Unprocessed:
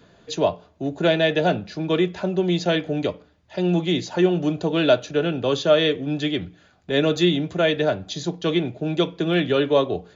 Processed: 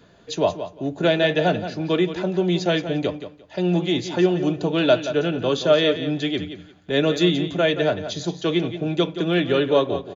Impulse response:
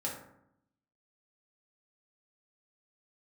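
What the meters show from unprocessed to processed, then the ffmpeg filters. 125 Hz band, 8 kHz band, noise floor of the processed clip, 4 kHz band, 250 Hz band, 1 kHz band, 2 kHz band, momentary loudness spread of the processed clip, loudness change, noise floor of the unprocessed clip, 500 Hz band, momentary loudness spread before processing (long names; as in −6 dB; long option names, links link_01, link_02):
0.0 dB, can't be measured, −50 dBFS, +0.5 dB, +0.5 dB, +0.5 dB, +0.5 dB, 9 LU, +0.5 dB, −57 dBFS, +0.5 dB, 8 LU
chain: -af "aecho=1:1:175|350|525:0.282|0.0535|0.0102"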